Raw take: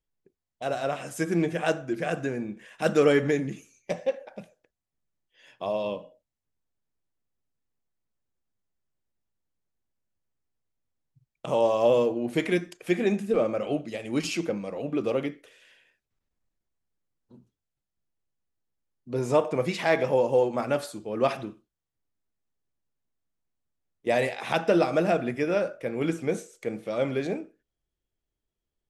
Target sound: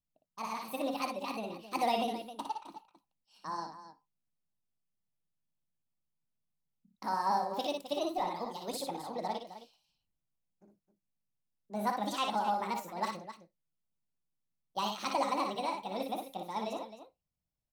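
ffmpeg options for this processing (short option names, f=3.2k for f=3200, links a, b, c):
-af "equalizer=f=100:t=o:w=0.67:g=9,equalizer=f=250:t=o:w=0.67:g=-6,equalizer=f=1k:t=o:w=0.67:g=-7,asetrate=71883,aresample=44100,aecho=1:1:58.31|262.4:0.562|0.251,volume=-8.5dB"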